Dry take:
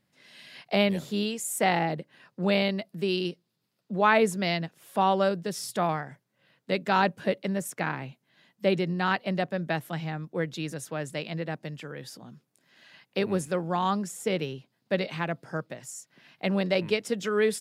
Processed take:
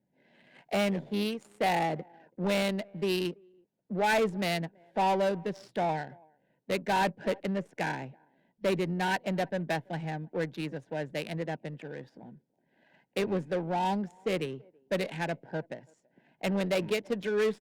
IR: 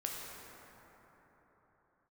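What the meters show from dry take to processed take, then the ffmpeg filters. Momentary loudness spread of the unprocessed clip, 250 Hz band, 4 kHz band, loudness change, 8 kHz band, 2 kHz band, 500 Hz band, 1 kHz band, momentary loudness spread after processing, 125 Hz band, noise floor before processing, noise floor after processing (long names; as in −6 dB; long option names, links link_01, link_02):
14 LU, −3.0 dB, −4.0 dB, −3.0 dB, −9.0 dB, −3.5 dB, −2.5 dB, −3.0 dB, 11 LU, −3.5 dB, −77 dBFS, −75 dBFS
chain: -filter_complex "[0:a]equalizer=frequency=890:width_type=o:width=0.41:gain=2,deesser=0.55,asuperstop=centerf=1200:order=20:qfactor=2.6,asplit=2[link_01][link_02];[link_02]adelay=330,highpass=300,lowpass=3400,asoftclip=type=hard:threshold=-19.5dB,volume=-27dB[link_03];[link_01][link_03]amix=inputs=2:normalize=0,adynamicsmooth=sensitivity=6.5:basefreq=930,highpass=150,asoftclip=type=tanh:threshold=-21.5dB" -ar 48000 -c:a libopus -b:a 48k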